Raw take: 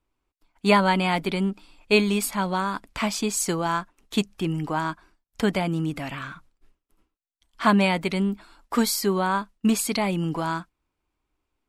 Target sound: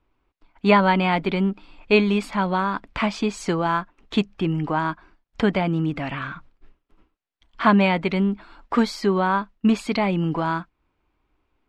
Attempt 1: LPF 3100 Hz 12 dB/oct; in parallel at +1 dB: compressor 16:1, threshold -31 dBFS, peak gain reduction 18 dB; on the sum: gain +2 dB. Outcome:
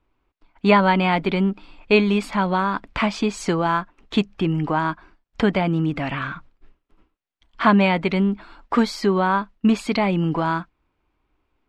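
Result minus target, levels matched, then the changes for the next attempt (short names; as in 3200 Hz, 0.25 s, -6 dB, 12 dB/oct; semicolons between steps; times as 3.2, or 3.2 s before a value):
compressor: peak gain reduction -8.5 dB
change: compressor 16:1, threshold -40 dBFS, peak gain reduction 26.5 dB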